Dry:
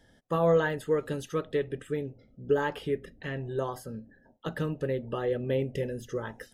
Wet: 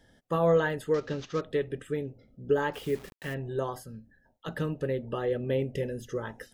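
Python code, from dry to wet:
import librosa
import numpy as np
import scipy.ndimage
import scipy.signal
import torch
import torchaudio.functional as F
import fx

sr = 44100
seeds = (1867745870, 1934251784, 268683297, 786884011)

y = fx.cvsd(x, sr, bps=32000, at=(0.94, 1.41))
y = fx.quant_dither(y, sr, seeds[0], bits=8, dither='none', at=(2.73, 3.33), fade=0.02)
y = fx.peak_eq(y, sr, hz=fx.line((3.83, 720.0), (4.47, 220.0)), db=-11.5, octaves=2.5, at=(3.83, 4.47), fade=0.02)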